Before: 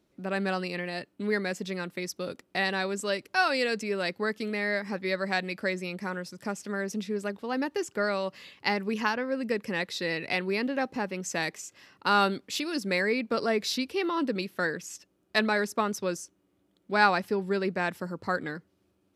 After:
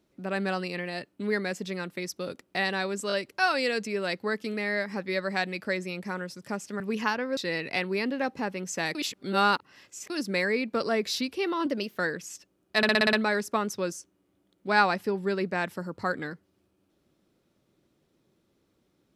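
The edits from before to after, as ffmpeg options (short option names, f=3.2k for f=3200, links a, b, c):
-filter_complex "[0:a]asplit=15[a][b][c][d][e][f][g][h][i][j][k][l][m][n][o];[a]atrim=end=3.102[p];[b]atrim=start=3.078:end=3.102[q];[c]atrim=start=3.078:end=6.762[r];[d]atrim=start=8.788:end=9.362[s];[e]atrim=start=9.938:end=11.522[t];[f]atrim=start=11.518:end=12.672,asetpts=PTS-STARTPTS,areverse[u];[g]atrim=start=12.668:end=14.234[v];[h]atrim=start=14.23:end=14.57,asetpts=PTS-STARTPTS,asetrate=48510,aresample=44100[w];[i]atrim=start=14.566:end=15.432[x];[j]atrim=start=15.368:end=15.432[y];[k]atrim=start=15.368:end=15.432[z];[l]atrim=start=15.368:end=15.432[aa];[m]atrim=start=15.368:end=15.432[ab];[n]atrim=start=15.368:end=15.432[ac];[o]atrim=start=15.368[ad];[p][q]acrossfade=d=0.004:c1=hsin:c2=hsin[ae];[ae][r]acrossfade=d=0.004:c1=hsin:c2=hsin[af];[af][s]acrossfade=d=0.004:c1=hsin:c2=hsin[ag];[ag][t]acrossfade=d=0.004:c1=hsin:c2=hsin[ah];[ah][u]acrossfade=d=0.004:c1=hsin:c2=hsin[ai];[ai][v]acrossfade=d=0.004:c1=hsin:c2=hsin[aj];[aj][w]acrossfade=d=0.004:c1=hsin:c2=hsin[ak];[ak][x]acrossfade=d=0.004:c1=hsin:c2=hsin[al];[al][y]acrossfade=d=0.004:c1=hsin:c2=hsin[am];[am][z]acrossfade=d=0.004:c1=hsin:c2=hsin[an];[an][aa]acrossfade=d=0.004:c1=hsin:c2=hsin[ao];[ao][ab]acrossfade=d=0.004:c1=hsin:c2=hsin[ap];[ap][ac]acrossfade=d=0.004:c1=hsin:c2=hsin[aq];[aq][ad]acrossfade=d=0.004:c1=hsin:c2=hsin"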